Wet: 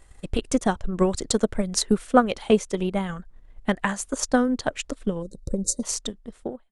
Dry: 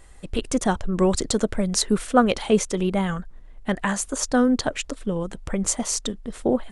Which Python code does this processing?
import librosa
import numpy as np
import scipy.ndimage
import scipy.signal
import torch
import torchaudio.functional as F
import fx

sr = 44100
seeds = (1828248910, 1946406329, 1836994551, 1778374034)

y = fx.fade_out_tail(x, sr, length_s=0.76)
y = fx.spec_box(y, sr, start_s=5.22, length_s=0.61, low_hz=590.0, high_hz=3700.0, gain_db=-29)
y = fx.transient(y, sr, attack_db=7, sustain_db=-4)
y = y * librosa.db_to_amplitude(-4.5)